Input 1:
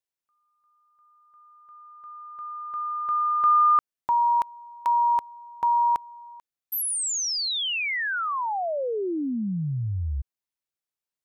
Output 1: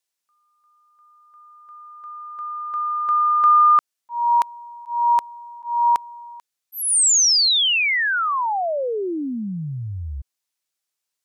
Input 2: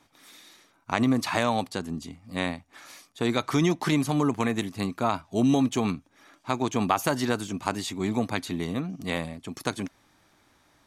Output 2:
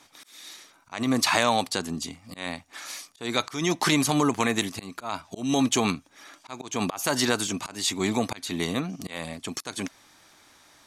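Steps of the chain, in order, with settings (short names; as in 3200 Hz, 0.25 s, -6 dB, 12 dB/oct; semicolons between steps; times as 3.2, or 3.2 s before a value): bell 6700 Hz +6 dB 2.3 oct; in parallel at -0.5 dB: limiter -16.5 dBFS; on the sum: low shelf 290 Hz -8 dB; auto swell 0.26 s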